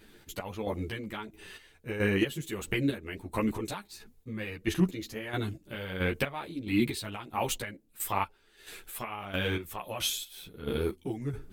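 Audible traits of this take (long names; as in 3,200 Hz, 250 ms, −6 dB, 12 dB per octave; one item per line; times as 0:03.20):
chopped level 1.5 Hz, depth 65%, duty 35%
a shimmering, thickened sound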